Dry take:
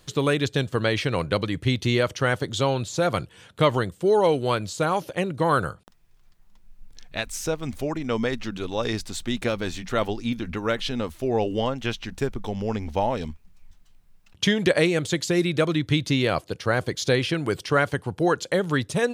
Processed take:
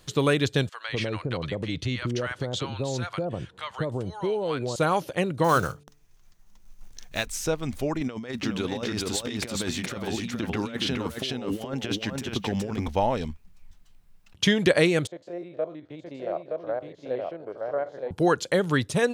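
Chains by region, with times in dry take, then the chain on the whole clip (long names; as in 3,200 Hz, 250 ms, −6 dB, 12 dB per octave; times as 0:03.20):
0:00.69–0:04.76: high-frequency loss of the air 54 metres + downward compressor 3 to 1, threshold −25 dBFS + multiband delay without the direct sound highs, lows 200 ms, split 850 Hz
0:05.44–0:07.27: one scale factor per block 5 bits + parametric band 6,200 Hz +8.5 dB 0.33 octaves + hum removal 145.7 Hz, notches 3
0:08.01–0:12.88: high-pass filter 96 Hz + compressor whose output falls as the input rises −30 dBFS, ratio −0.5 + single-tap delay 419 ms −3 dB
0:15.07–0:18.11: spectrum averaged block by block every 50 ms + resonant band-pass 620 Hz, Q 3.8 + single-tap delay 920 ms −3 dB
whole clip: no processing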